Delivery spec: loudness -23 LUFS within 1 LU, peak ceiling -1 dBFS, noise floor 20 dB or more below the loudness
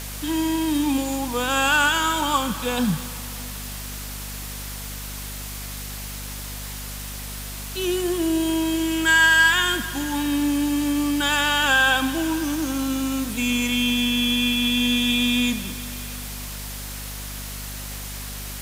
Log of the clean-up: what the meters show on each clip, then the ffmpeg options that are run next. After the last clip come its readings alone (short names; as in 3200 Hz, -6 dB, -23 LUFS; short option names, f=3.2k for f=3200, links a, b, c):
hum 50 Hz; harmonics up to 250 Hz; hum level -33 dBFS; noise floor -33 dBFS; noise floor target -43 dBFS; loudness -22.5 LUFS; peak -6.0 dBFS; loudness target -23.0 LUFS
-> -af "bandreject=f=50:t=h:w=6,bandreject=f=100:t=h:w=6,bandreject=f=150:t=h:w=6,bandreject=f=200:t=h:w=6,bandreject=f=250:t=h:w=6"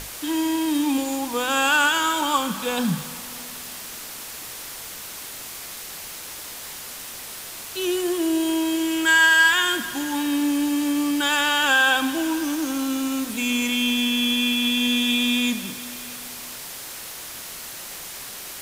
hum none; noise floor -37 dBFS; noise floor target -41 dBFS
-> -af "afftdn=nr=6:nf=-37"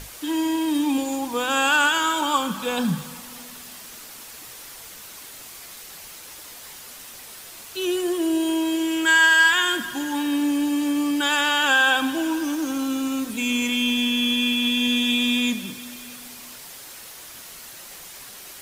noise floor -41 dBFS; loudness -21.0 LUFS; peak -6.5 dBFS; loudness target -23.0 LUFS
-> -af "volume=-2dB"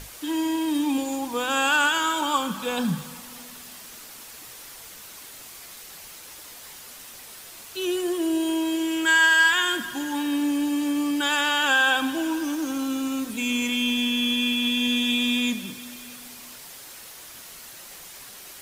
loudness -23.0 LUFS; peak -8.5 dBFS; noise floor -43 dBFS